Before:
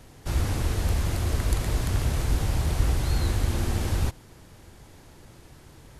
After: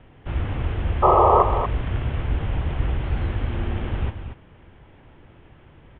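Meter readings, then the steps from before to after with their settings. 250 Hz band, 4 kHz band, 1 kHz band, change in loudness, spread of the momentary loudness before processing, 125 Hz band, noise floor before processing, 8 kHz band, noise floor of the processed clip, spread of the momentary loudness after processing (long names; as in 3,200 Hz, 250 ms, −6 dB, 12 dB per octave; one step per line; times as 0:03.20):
+2.0 dB, −5.5 dB, +17.0 dB, +4.5 dB, 2 LU, +0.5 dB, −51 dBFS, below −40 dB, −51 dBFS, 13 LU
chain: sound drawn into the spectrogram noise, 0:01.02–0:01.43, 340–1,300 Hz −15 dBFS
Butterworth low-pass 3,300 Hz 72 dB per octave
on a send: single-tap delay 234 ms −9 dB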